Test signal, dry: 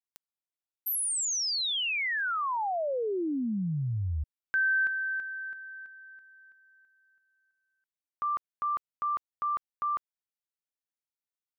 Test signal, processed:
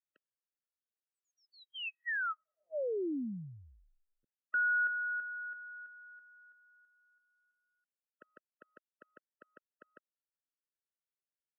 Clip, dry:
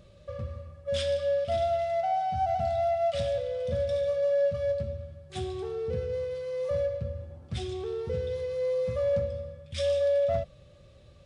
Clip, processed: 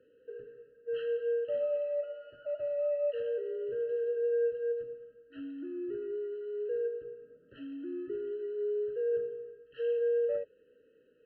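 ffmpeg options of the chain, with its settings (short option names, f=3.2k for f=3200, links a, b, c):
-af "highpass=f=330:t=q:w=0.5412,highpass=f=330:t=q:w=1.307,lowpass=f=2.7k:t=q:w=0.5176,lowpass=f=2.7k:t=q:w=0.7071,lowpass=f=2.7k:t=q:w=1.932,afreqshift=-94,afftfilt=real='re*eq(mod(floor(b*sr/1024/640),2),0)':imag='im*eq(mod(floor(b*sr/1024/640),2),0)':win_size=1024:overlap=0.75,volume=-4dB"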